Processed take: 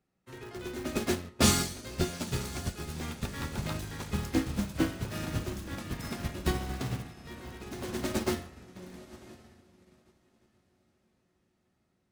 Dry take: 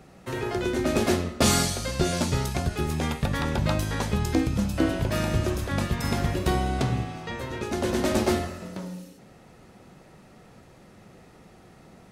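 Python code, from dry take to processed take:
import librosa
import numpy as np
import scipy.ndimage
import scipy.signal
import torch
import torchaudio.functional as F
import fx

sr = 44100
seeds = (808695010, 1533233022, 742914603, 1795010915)

p1 = fx.peak_eq(x, sr, hz=640.0, db=-5.0, octaves=1.1)
p2 = fx.hum_notches(p1, sr, base_hz=50, count=3)
p3 = fx.echo_diffused(p2, sr, ms=1028, feedback_pct=49, wet_db=-8.5)
p4 = (np.mod(10.0 ** (24.5 / 20.0) * p3 + 1.0, 2.0) - 1.0) / 10.0 ** (24.5 / 20.0)
p5 = p3 + (p4 * librosa.db_to_amplitude(-9.0))
y = fx.upward_expand(p5, sr, threshold_db=-39.0, expansion=2.5)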